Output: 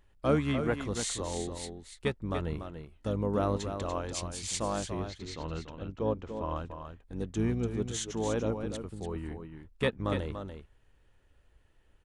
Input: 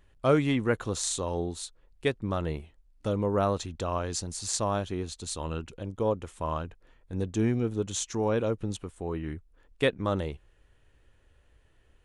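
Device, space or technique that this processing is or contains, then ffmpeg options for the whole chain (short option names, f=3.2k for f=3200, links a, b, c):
octave pedal: -filter_complex "[0:a]asettb=1/sr,asplit=3[a][b][c];[a]atrim=end=5.004[d];[b]atrim=start=5:end=6.56,asetpts=PTS-STARTPTS,afade=t=in:d=0.004:c=qsin,afade=t=out:st=1.556:d=0.004:c=qsin,lowpass=f=5.6k:w=0.5412,lowpass=f=5.6k:w=1.3066[e];[c]atrim=start=6.556[f];[d][e]acrossfade=d=0.004:c1=hsin:c2=qsin[g];[g][f]acrossfade=d=0.004:c1=qsin:c2=hsin,aecho=1:1:290:0.398,asplit=2[h][i];[i]asetrate=22050,aresample=44100,atempo=2,volume=-7dB[j];[h][j]amix=inputs=2:normalize=0,volume=-4.5dB"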